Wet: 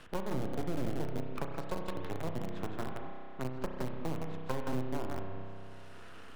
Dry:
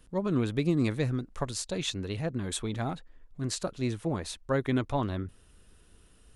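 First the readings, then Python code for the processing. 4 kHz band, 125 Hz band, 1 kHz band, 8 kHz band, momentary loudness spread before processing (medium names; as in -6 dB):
-13.5 dB, -8.5 dB, -3.0 dB, -16.5 dB, 8 LU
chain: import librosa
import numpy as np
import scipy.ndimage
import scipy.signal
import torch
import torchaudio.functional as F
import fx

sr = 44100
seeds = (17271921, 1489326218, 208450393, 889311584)

p1 = scipy.signal.sosfilt(scipy.signal.butter(2, 1300.0, 'lowpass', fs=sr, output='sos'), x)
p2 = fx.env_lowpass_down(p1, sr, base_hz=360.0, full_db=-28.5)
p3 = fx.highpass(p2, sr, hz=46.0, slope=6)
p4 = np.diff(p3, prepend=0.0)
p5 = p4 + fx.echo_single(p4, sr, ms=166, db=-4.5, dry=0)
p6 = np.maximum(p5, 0.0)
p7 = fx.hpss(p6, sr, part='harmonic', gain_db=-3)
p8 = fx.quant_companded(p7, sr, bits=4)
p9 = p7 + (p8 * librosa.db_to_amplitude(-4.0))
p10 = fx.low_shelf(p9, sr, hz=240.0, db=5.0)
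p11 = fx.rev_spring(p10, sr, rt60_s=1.4, pass_ms=(31,), chirp_ms=65, drr_db=3.5)
p12 = fx.band_squash(p11, sr, depth_pct=70)
y = p12 * librosa.db_to_amplitude(18.0)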